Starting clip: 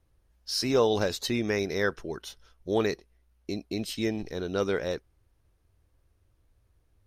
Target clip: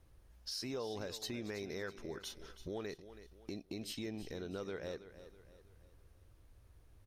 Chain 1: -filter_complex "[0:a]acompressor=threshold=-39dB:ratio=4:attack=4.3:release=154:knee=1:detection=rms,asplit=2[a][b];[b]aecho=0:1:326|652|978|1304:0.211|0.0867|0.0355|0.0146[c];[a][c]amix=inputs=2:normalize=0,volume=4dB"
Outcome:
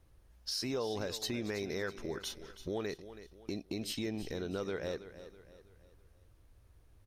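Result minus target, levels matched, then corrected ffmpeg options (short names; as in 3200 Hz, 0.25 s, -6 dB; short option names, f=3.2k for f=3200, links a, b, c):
compressor: peak gain reduction -5 dB
-filter_complex "[0:a]acompressor=threshold=-46dB:ratio=4:attack=4.3:release=154:knee=1:detection=rms,asplit=2[a][b];[b]aecho=0:1:326|652|978|1304:0.211|0.0867|0.0355|0.0146[c];[a][c]amix=inputs=2:normalize=0,volume=4dB"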